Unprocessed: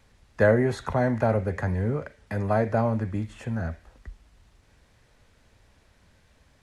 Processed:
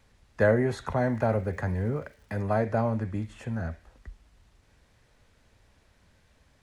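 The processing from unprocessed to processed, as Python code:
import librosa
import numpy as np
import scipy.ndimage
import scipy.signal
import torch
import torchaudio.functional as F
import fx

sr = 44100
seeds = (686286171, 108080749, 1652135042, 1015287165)

y = fx.dmg_crackle(x, sr, seeds[0], per_s=310.0, level_db=-51.0, at=(1.0, 2.41), fade=0.02)
y = F.gain(torch.from_numpy(y), -2.5).numpy()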